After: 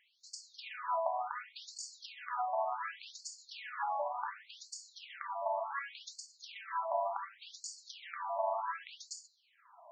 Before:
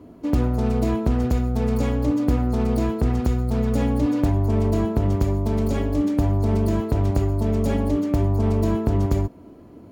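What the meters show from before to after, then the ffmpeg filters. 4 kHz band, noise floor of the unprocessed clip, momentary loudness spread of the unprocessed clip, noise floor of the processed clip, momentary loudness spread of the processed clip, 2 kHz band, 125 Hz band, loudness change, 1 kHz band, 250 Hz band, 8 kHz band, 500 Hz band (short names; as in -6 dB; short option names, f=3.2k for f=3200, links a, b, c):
-4.5 dB, -45 dBFS, 2 LU, -71 dBFS, 13 LU, -4.0 dB, under -40 dB, -17.5 dB, -3.0 dB, under -40 dB, -3.5 dB, -14.5 dB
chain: -af "bandreject=f=156.6:t=h:w=4,bandreject=f=313.2:t=h:w=4,bandreject=f=469.8:t=h:w=4,bandreject=f=626.4:t=h:w=4,bandreject=f=783:t=h:w=4,bandreject=f=939.6:t=h:w=4,bandreject=f=1.0962k:t=h:w=4,bandreject=f=1.2528k:t=h:w=4,bandreject=f=1.4094k:t=h:w=4,bandreject=f=1.566k:t=h:w=4,bandreject=f=1.7226k:t=h:w=4,bandreject=f=1.8792k:t=h:w=4,bandreject=f=2.0358k:t=h:w=4,bandreject=f=2.1924k:t=h:w=4,bandreject=f=2.349k:t=h:w=4,bandreject=f=2.5056k:t=h:w=4,bandreject=f=2.6622k:t=h:w=4,bandreject=f=2.8188k:t=h:w=4,bandreject=f=2.9754k:t=h:w=4,bandreject=f=3.132k:t=h:w=4,bandreject=f=3.2886k:t=h:w=4,bandreject=f=3.4452k:t=h:w=4,bandreject=f=3.6018k:t=h:w=4,bandreject=f=3.7584k:t=h:w=4,bandreject=f=3.915k:t=h:w=4,bandreject=f=4.0716k:t=h:w=4,bandreject=f=4.2282k:t=h:w=4,bandreject=f=4.3848k:t=h:w=4,bandreject=f=4.5414k:t=h:w=4,bandreject=f=4.698k:t=h:w=4,afftfilt=real='re*between(b*sr/1024,790*pow(6200/790,0.5+0.5*sin(2*PI*0.68*pts/sr))/1.41,790*pow(6200/790,0.5+0.5*sin(2*PI*0.68*pts/sr))*1.41)':imag='im*between(b*sr/1024,790*pow(6200/790,0.5+0.5*sin(2*PI*0.68*pts/sr))/1.41,790*pow(6200/790,0.5+0.5*sin(2*PI*0.68*pts/sr))*1.41)':win_size=1024:overlap=0.75,volume=2.5dB"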